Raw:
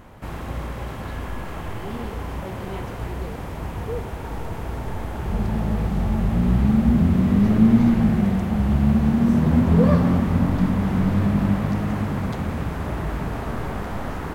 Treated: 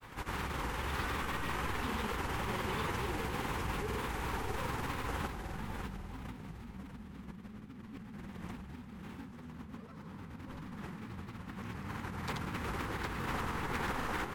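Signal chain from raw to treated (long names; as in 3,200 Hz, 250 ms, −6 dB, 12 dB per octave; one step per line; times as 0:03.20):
compressor whose output falls as the input rises −29 dBFS, ratio −1
low-shelf EQ 440 Hz −11 dB
on a send: single-tap delay 638 ms −6 dB
on the sum: granular cloud, grains 20 per second, pitch spread up and down by 3 semitones
parametric band 640 Hz −14.5 dB 0.29 octaves
level −3.5 dB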